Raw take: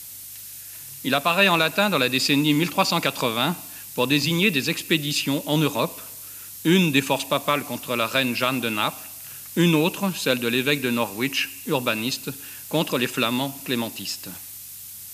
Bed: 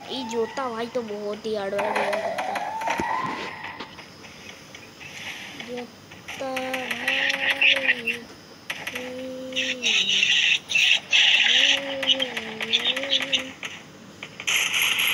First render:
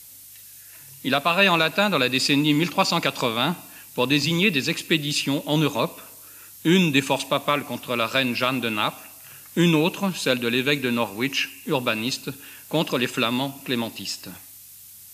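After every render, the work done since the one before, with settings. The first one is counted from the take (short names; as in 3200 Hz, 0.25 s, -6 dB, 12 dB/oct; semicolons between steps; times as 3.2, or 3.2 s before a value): noise print and reduce 6 dB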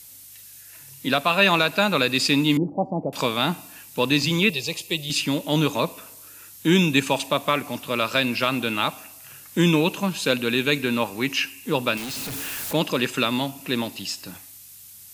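2.57–3.13 elliptic low-pass 780 Hz, stop band 50 dB; 4.5–5.1 fixed phaser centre 620 Hz, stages 4; 11.97–12.73 infinite clipping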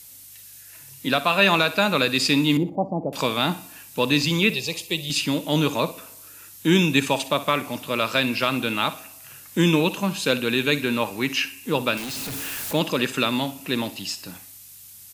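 feedback echo 61 ms, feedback 30%, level -16 dB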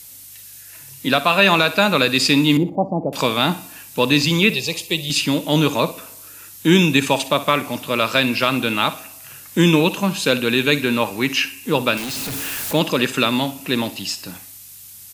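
gain +4.5 dB; limiter -2 dBFS, peak gain reduction 2.5 dB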